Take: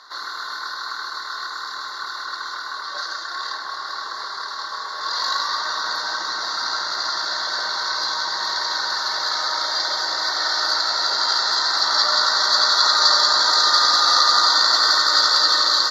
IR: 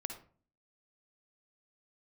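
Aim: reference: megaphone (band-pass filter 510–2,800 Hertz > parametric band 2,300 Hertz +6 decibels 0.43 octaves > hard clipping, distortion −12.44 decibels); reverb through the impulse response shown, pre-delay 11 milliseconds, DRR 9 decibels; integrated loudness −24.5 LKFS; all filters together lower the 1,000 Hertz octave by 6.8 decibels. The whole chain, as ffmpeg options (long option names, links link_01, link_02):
-filter_complex "[0:a]equalizer=frequency=1000:width_type=o:gain=-9,asplit=2[link_01][link_02];[1:a]atrim=start_sample=2205,adelay=11[link_03];[link_02][link_03]afir=irnorm=-1:irlink=0,volume=-8dB[link_04];[link_01][link_04]amix=inputs=2:normalize=0,highpass=510,lowpass=2800,equalizer=frequency=2300:width_type=o:width=0.43:gain=6,asoftclip=type=hard:threshold=-22dB,volume=2.5dB"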